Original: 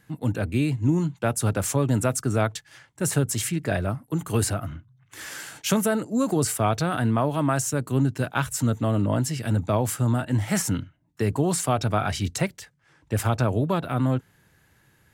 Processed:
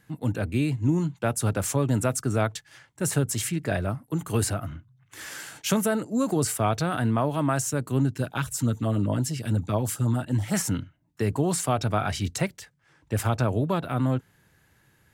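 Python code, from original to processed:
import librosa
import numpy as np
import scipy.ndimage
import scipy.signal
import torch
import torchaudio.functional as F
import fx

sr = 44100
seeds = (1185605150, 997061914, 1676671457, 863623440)

y = fx.filter_lfo_notch(x, sr, shape='sine', hz=9.2, low_hz=580.0, high_hz=2400.0, q=0.96, at=(8.1, 10.54))
y = F.gain(torch.from_numpy(y), -1.5).numpy()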